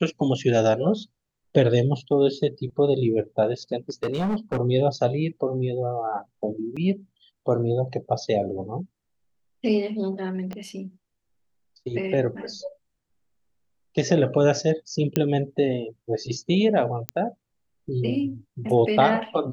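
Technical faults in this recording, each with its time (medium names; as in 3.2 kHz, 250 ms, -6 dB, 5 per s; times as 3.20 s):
3.89–4.59 s: clipped -21 dBFS
6.76–6.77 s: dropout 6 ms
10.53 s: pop -21 dBFS
15.16 s: pop -9 dBFS
17.09 s: pop -9 dBFS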